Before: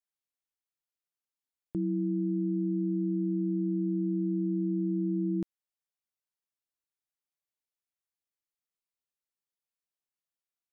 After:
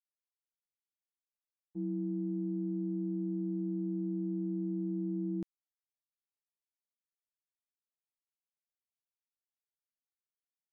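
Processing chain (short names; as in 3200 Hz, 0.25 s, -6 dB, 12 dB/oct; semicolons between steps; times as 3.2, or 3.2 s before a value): expander -24 dBFS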